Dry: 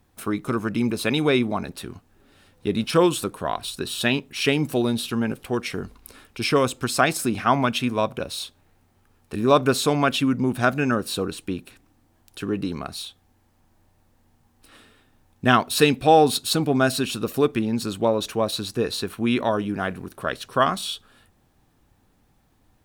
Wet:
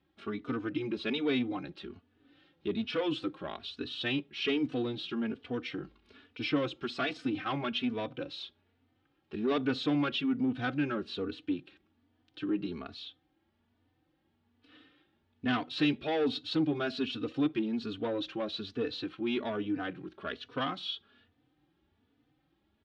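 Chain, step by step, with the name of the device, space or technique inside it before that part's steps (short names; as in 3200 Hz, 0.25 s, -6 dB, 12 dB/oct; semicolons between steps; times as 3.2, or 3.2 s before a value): barber-pole flanger into a guitar amplifier (endless flanger 3.3 ms +1.2 Hz; soft clip -18.5 dBFS, distortion -13 dB; speaker cabinet 83–4100 Hz, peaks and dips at 110 Hz -5 dB, 190 Hz -4 dB, 300 Hz +8 dB, 630 Hz -4 dB, 990 Hz -6 dB, 3200 Hz +5 dB); gain -6 dB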